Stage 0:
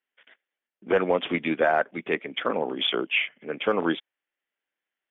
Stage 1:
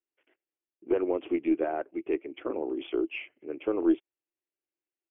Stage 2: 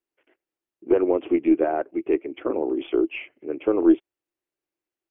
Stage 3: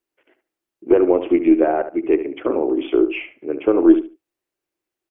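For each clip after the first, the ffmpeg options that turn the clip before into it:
-af "firequalizer=gain_entry='entry(110,0);entry(180,-17);entry(330,10);entry(470,-3);entry(1700,-15);entry(2700,-7);entry(3900,-29)':delay=0.05:min_phase=1,aeval=exprs='0.335*(cos(1*acos(clip(val(0)/0.335,-1,1)))-cos(1*PI/2))+0.0133*(cos(2*acos(clip(val(0)/0.335,-1,1)))-cos(2*PI/2))':c=same,volume=-4.5dB"
-af "highshelf=f=2.7k:g=-8.5,volume=7.5dB"
-filter_complex "[0:a]asplit=2[a][b];[b]adelay=72,lowpass=f=2.8k:p=1,volume=-10.5dB,asplit=2[c][d];[d]adelay=72,lowpass=f=2.8k:p=1,volume=0.21,asplit=2[e][f];[f]adelay=72,lowpass=f=2.8k:p=1,volume=0.21[g];[a][c][e][g]amix=inputs=4:normalize=0,volume=5dB"

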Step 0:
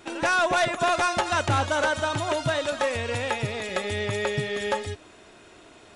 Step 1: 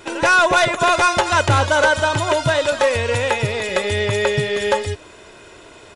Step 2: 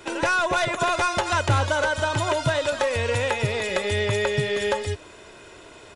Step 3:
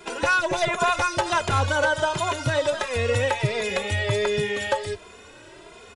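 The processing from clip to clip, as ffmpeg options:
-af "aecho=1:1:2:0.35,volume=7.5dB"
-filter_complex "[0:a]acrossover=split=140[a][b];[b]acompressor=threshold=-17dB:ratio=4[c];[a][c]amix=inputs=2:normalize=0,volume=-3dB"
-filter_complex "[0:a]asplit=2[a][b];[b]adelay=2.5,afreqshift=1.4[c];[a][c]amix=inputs=2:normalize=1,volume=2.5dB"

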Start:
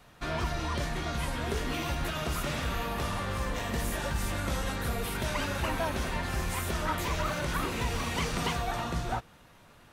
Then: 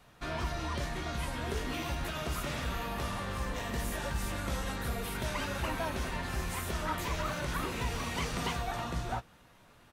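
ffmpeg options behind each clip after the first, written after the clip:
-filter_complex "[0:a]asplit=2[a][b];[b]adelay=16,volume=-13dB[c];[a][c]amix=inputs=2:normalize=0,volume=-3.5dB"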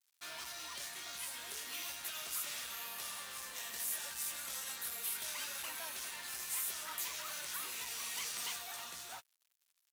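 -af "aeval=exprs='0.0841*(cos(1*acos(clip(val(0)/0.0841,-1,1)))-cos(1*PI/2))+0.00841*(cos(5*acos(clip(val(0)/0.0841,-1,1)))-cos(5*PI/2))':c=same,aeval=exprs='sgn(val(0))*max(abs(val(0))-0.00316,0)':c=same,aderivative,volume=3dB"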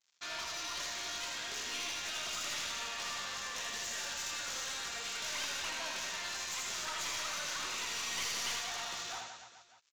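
-filter_complex "[0:a]aresample=16000,aresample=44100,asplit=2[a][b];[b]aecho=0:1:80|176|291.2|429.4|595.3:0.631|0.398|0.251|0.158|0.1[c];[a][c]amix=inputs=2:normalize=0,aeval=exprs='clip(val(0),-1,0.00708)':c=same,volume=5.5dB"

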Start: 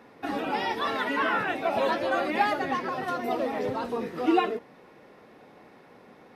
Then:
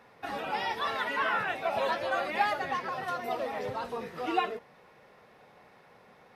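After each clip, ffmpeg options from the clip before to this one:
-af "equalizer=f=290:t=o:w=0.93:g=-12,volume=-2dB"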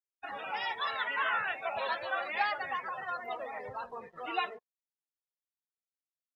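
-af "acrusher=bits=6:mix=0:aa=0.5,afftdn=nr=32:nf=-40,equalizer=f=230:w=0.36:g=-15,volume=2dB"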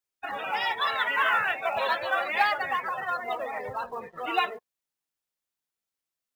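-af "acrusher=bits=8:mode=log:mix=0:aa=0.000001,volume=7dB"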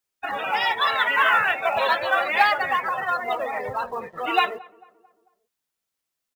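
-filter_complex "[0:a]asplit=2[a][b];[b]adelay=222,lowpass=f=1.3k:p=1,volume=-22dB,asplit=2[c][d];[d]adelay=222,lowpass=f=1.3k:p=1,volume=0.52,asplit=2[e][f];[f]adelay=222,lowpass=f=1.3k:p=1,volume=0.52,asplit=2[g][h];[h]adelay=222,lowpass=f=1.3k:p=1,volume=0.52[i];[a][c][e][g][i]amix=inputs=5:normalize=0,volume=5.5dB"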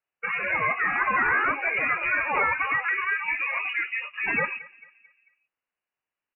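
-filter_complex "[0:a]acrossover=split=2100[a][b];[a]alimiter=limit=-17.5dB:level=0:latency=1:release=142[c];[c][b]amix=inputs=2:normalize=0,lowpass=f=2.6k:t=q:w=0.5098,lowpass=f=2.6k:t=q:w=0.6013,lowpass=f=2.6k:t=q:w=0.9,lowpass=f=2.6k:t=q:w=2.563,afreqshift=-3000"

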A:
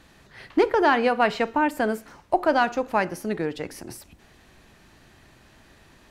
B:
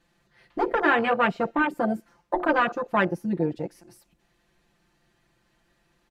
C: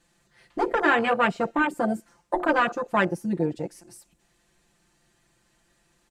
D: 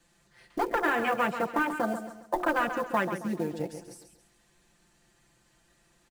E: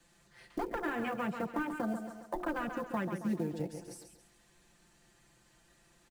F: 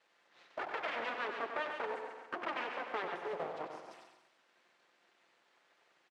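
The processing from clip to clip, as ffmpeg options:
-af "aecho=1:1:5.8:0.95,afwtdn=0.0631,afftfilt=real='re*lt(hypot(re,im),1.12)':imag='im*lt(hypot(re,im),1.12)':win_size=1024:overlap=0.75"
-af "equalizer=f=8.1k:t=o:w=0.97:g=11.5"
-filter_complex "[0:a]acrossover=split=230|780|2900|7800[a][b][c][d][e];[a]acompressor=threshold=-40dB:ratio=4[f];[b]acompressor=threshold=-32dB:ratio=4[g];[c]acompressor=threshold=-27dB:ratio=4[h];[d]acompressor=threshold=-51dB:ratio=4[i];[e]acompressor=threshold=-56dB:ratio=4[j];[f][g][h][i][j]amix=inputs=5:normalize=0,acrusher=bits=6:mode=log:mix=0:aa=0.000001,aecho=1:1:136|272|408|544:0.335|0.127|0.0484|0.0184"
-filter_complex "[0:a]acrossover=split=280[a][b];[b]acompressor=threshold=-44dB:ratio=2[c];[a][c]amix=inputs=2:normalize=0"
-filter_complex "[0:a]aeval=exprs='abs(val(0))':c=same,highpass=450,lowpass=3.1k,asplit=2[a][b];[b]aecho=0:1:95|190|285|380|475:0.422|0.173|0.0709|0.0291|0.0119[c];[a][c]amix=inputs=2:normalize=0,volume=2.5dB"

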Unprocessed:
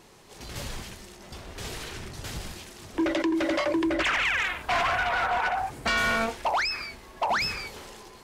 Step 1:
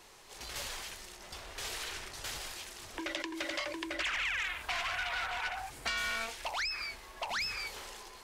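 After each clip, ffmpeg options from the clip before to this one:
-filter_complex "[0:a]equalizer=f=170:w=0.45:g=-13,acrossover=split=300|2000[a][b][c];[a]acompressor=threshold=-50dB:ratio=4[d];[b]acompressor=threshold=-42dB:ratio=4[e];[c]acompressor=threshold=-35dB:ratio=4[f];[d][e][f]amix=inputs=3:normalize=0"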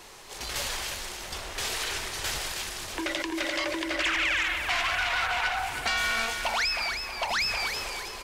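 -filter_complex "[0:a]asplit=2[a][b];[b]alimiter=level_in=5.5dB:limit=-24dB:level=0:latency=1:release=73,volume=-5.5dB,volume=0.5dB[c];[a][c]amix=inputs=2:normalize=0,aecho=1:1:319|638|957|1276|1595:0.422|0.173|0.0709|0.0291|0.0119,volume=2.5dB"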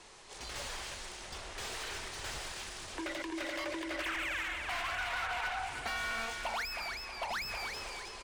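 -filter_complex "[0:a]aresample=22050,aresample=44100,acrossover=split=1800[a][b];[b]asoftclip=type=tanh:threshold=-33dB[c];[a][c]amix=inputs=2:normalize=0,volume=-7dB"

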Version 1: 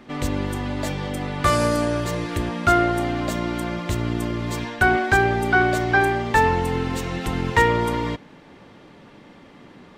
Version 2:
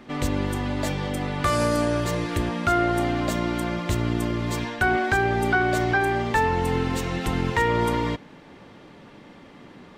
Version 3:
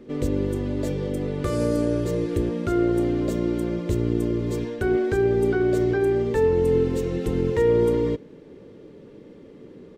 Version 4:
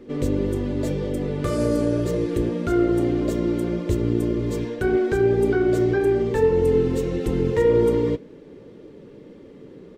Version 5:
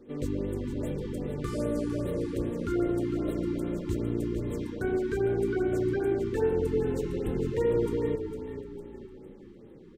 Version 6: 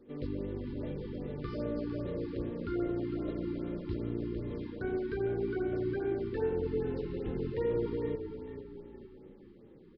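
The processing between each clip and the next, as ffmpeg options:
-af "alimiter=limit=-11.5dB:level=0:latency=1:release=231"
-af "firequalizer=gain_entry='entry(240,0);entry(450,9);entry(710,-12);entry(6800,-7)':delay=0.05:min_phase=1"
-af "flanger=delay=2.1:depth=6.2:regen=-56:speed=1.8:shape=triangular,volume=5.5dB"
-filter_complex "[0:a]asplit=6[a][b][c][d][e][f];[b]adelay=455,afreqshift=-30,volume=-9dB[g];[c]adelay=910,afreqshift=-60,volume=-15.9dB[h];[d]adelay=1365,afreqshift=-90,volume=-22.9dB[i];[e]adelay=1820,afreqshift=-120,volume=-29.8dB[j];[f]adelay=2275,afreqshift=-150,volume=-36.7dB[k];[a][g][h][i][j][k]amix=inputs=6:normalize=0,afftfilt=real='re*(1-between(b*sr/1024,560*pow(6000/560,0.5+0.5*sin(2*PI*2.5*pts/sr))/1.41,560*pow(6000/560,0.5+0.5*sin(2*PI*2.5*pts/sr))*1.41))':imag='im*(1-between(b*sr/1024,560*pow(6000/560,0.5+0.5*sin(2*PI*2.5*pts/sr))/1.41,560*pow(6000/560,0.5+0.5*sin(2*PI*2.5*pts/sr))*1.41))':win_size=1024:overlap=0.75,volume=-8.5dB"
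-af "aresample=11025,aresample=44100,volume=-5.5dB"

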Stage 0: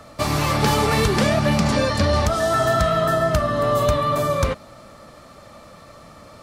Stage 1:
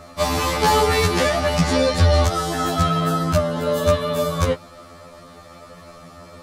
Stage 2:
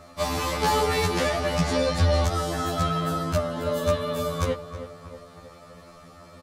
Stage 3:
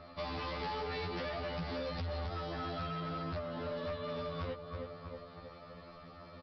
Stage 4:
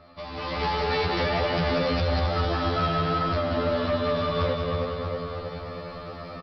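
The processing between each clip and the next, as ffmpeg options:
-af "afftfilt=real='re*2*eq(mod(b,4),0)':imag='im*2*eq(mod(b,4),0)':win_size=2048:overlap=0.75,volume=4dB"
-filter_complex "[0:a]asplit=2[a][b];[b]adelay=319,lowpass=f=2.3k:p=1,volume=-11.5dB,asplit=2[c][d];[d]adelay=319,lowpass=f=2.3k:p=1,volume=0.52,asplit=2[e][f];[f]adelay=319,lowpass=f=2.3k:p=1,volume=0.52,asplit=2[g][h];[h]adelay=319,lowpass=f=2.3k:p=1,volume=0.52,asplit=2[i][j];[j]adelay=319,lowpass=f=2.3k:p=1,volume=0.52,asplit=2[k][l];[l]adelay=319,lowpass=f=2.3k:p=1,volume=0.52[m];[a][c][e][g][i][k][m]amix=inputs=7:normalize=0,volume=-6dB"
-af "acompressor=threshold=-33dB:ratio=2.5,aresample=11025,asoftclip=type=hard:threshold=-30.5dB,aresample=44100,volume=-4.5dB"
-filter_complex "[0:a]dynaudnorm=f=320:g=3:m=12dB,asplit=2[a][b];[b]aecho=0:1:190|399|628.9|881.8|1160:0.631|0.398|0.251|0.158|0.1[c];[a][c]amix=inputs=2:normalize=0"

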